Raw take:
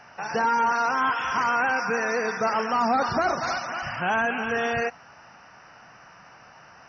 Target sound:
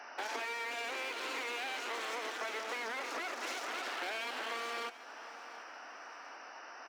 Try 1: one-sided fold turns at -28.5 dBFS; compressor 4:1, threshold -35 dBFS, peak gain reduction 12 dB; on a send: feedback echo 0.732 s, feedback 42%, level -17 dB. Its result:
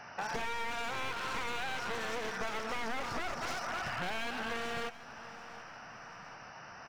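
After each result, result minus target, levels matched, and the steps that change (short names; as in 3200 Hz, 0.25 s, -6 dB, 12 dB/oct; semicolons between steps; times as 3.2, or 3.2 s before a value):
one-sided fold: distortion -8 dB; 250 Hz band +5.0 dB
change: one-sided fold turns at -35 dBFS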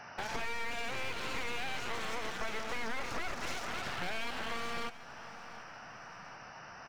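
250 Hz band +5.0 dB
add after compressor: steep high-pass 270 Hz 48 dB/oct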